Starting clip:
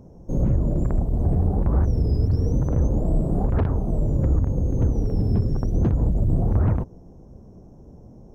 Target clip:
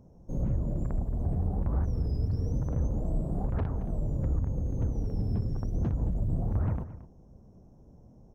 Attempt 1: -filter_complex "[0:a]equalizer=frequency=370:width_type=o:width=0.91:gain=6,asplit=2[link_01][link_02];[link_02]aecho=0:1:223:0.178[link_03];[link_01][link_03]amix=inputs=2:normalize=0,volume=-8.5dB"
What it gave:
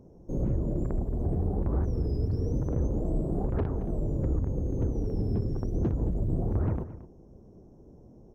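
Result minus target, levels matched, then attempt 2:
500 Hz band +5.5 dB
-filter_complex "[0:a]equalizer=frequency=370:width_type=o:width=0.91:gain=-3.5,asplit=2[link_01][link_02];[link_02]aecho=0:1:223:0.178[link_03];[link_01][link_03]amix=inputs=2:normalize=0,volume=-8.5dB"

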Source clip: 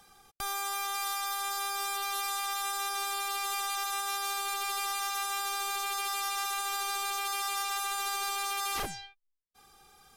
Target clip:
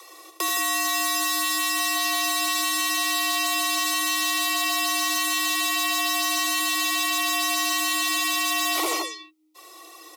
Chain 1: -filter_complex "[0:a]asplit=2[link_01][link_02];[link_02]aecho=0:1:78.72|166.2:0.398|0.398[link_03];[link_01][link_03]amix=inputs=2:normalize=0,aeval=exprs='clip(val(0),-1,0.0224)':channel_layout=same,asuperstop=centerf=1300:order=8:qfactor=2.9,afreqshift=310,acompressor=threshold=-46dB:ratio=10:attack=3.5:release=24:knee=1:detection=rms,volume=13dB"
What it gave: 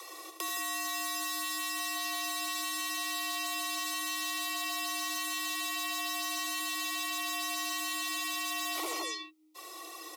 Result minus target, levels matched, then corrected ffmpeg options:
downward compressor: peak gain reduction +11 dB
-filter_complex "[0:a]asplit=2[link_01][link_02];[link_02]aecho=0:1:78.72|166.2:0.398|0.398[link_03];[link_01][link_03]amix=inputs=2:normalize=0,aeval=exprs='clip(val(0),-1,0.0224)':channel_layout=same,asuperstop=centerf=1300:order=8:qfactor=2.9,afreqshift=310,acompressor=threshold=-34dB:ratio=10:attack=3.5:release=24:knee=1:detection=rms,volume=13dB"

